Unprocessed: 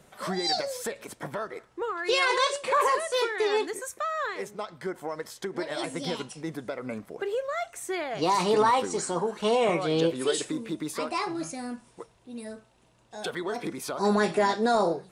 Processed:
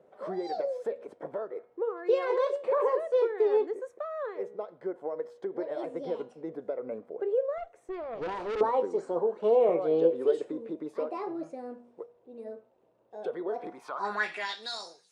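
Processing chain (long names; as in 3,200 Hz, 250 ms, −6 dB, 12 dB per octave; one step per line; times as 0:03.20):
hum removal 240.3 Hz, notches 17
band-pass filter sweep 490 Hz → 6,000 Hz, 0:13.47–0:14.91
0:07.58–0:08.61: tube saturation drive 34 dB, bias 0.55
level +3.5 dB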